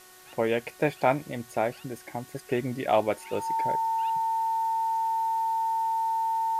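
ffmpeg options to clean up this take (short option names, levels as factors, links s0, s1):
-af "adeclick=t=4,bandreject=f=368.7:t=h:w=4,bandreject=f=737.4:t=h:w=4,bandreject=f=1106.1:t=h:w=4,bandreject=f=1474.8:t=h:w=4,bandreject=f=1843.5:t=h:w=4,bandreject=f=900:w=30,afwtdn=0.0025"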